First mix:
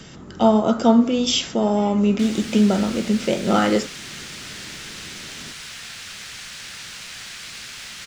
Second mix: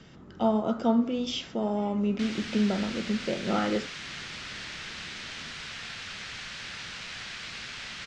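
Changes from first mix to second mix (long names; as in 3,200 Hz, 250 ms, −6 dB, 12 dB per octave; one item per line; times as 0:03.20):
speech −9.0 dB
master: add high-frequency loss of the air 130 metres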